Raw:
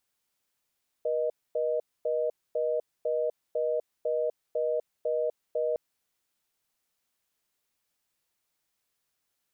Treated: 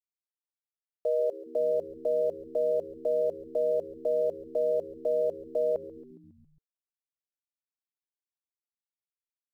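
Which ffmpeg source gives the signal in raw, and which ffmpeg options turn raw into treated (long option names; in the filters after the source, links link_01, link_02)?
-f lavfi -i "aevalsrc='0.0398*(sin(2*PI*480*t)+sin(2*PI*620*t))*clip(min(mod(t,0.5),0.25-mod(t,0.5))/0.005,0,1)':duration=4.71:sample_rate=44100"
-filter_complex "[0:a]asplit=2[link_01][link_02];[link_02]alimiter=level_in=9.5dB:limit=-24dB:level=0:latency=1:release=26,volume=-9.5dB,volume=-1dB[link_03];[link_01][link_03]amix=inputs=2:normalize=0,aeval=exprs='val(0)*gte(abs(val(0)),0.00316)':channel_layout=same,asplit=7[link_04][link_05][link_06][link_07][link_08][link_09][link_10];[link_05]adelay=137,afreqshift=-78,volume=-17dB[link_11];[link_06]adelay=274,afreqshift=-156,volume=-21dB[link_12];[link_07]adelay=411,afreqshift=-234,volume=-25dB[link_13];[link_08]adelay=548,afreqshift=-312,volume=-29dB[link_14];[link_09]adelay=685,afreqshift=-390,volume=-33.1dB[link_15];[link_10]adelay=822,afreqshift=-468,volume=-37.1dB[link_16];[link_04][link_11][link_12][link_13][link_14][link_15][link_16]amix=inputs=7:normalize=0"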